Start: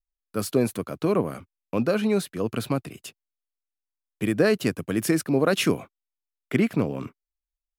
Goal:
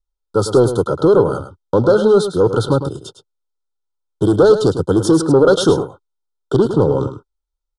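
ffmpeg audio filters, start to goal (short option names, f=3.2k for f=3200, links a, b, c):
-filter_complex "[0:a]aemphasis=mode=reproduction:type=75fm,agate=range=-8dB:threshold=-45dB:ratio=16:detection=peak,highshelf=f=6.3k:g=6.5,aecho=1:1:2.2:0.66,asplit=2[a][b];[b]alimiter=limit=-17.5dB:level=0:latency=1:release=206,volume=0dB[c];[a][c]amix=inputs=2:normalize=0,asoftclip=type=tanh:threshold=-13dB,asplit=2[d][e];[e]aecho=0:1:105:0.299[f];[d][f]amix=inputs=2:normalize=0,aresample=22050,aresample=44100,asuperstop=centerf=2200:order=12:qfactor=1.3,volume=8dB"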